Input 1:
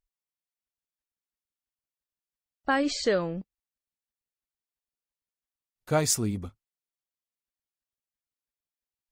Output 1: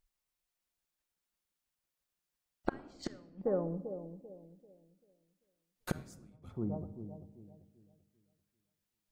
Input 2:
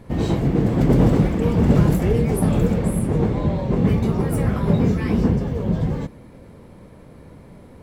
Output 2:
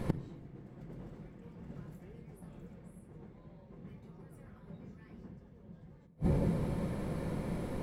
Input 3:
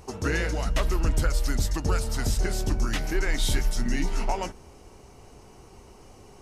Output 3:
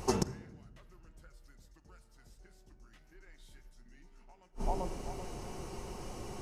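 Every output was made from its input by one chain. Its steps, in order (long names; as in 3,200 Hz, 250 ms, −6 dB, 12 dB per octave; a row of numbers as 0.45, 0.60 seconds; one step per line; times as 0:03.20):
dynamic equaliser 1,600 Hz, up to +4 dB, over −44 dBFS, Q 1.3
in parallel at −10.5 dB: dead-zone distortion −32 dBFS
on the sum: bucket-brigade delay 390 ms, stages 2,048, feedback 32%, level −14 dB
gate with flip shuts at −21 dBFS, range −41 dB
rectangular room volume 3,500 cubic metres, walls furnished, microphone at 0.91 metres
level +5 dB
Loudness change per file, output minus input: −13.0, −19.0, −12.5 LU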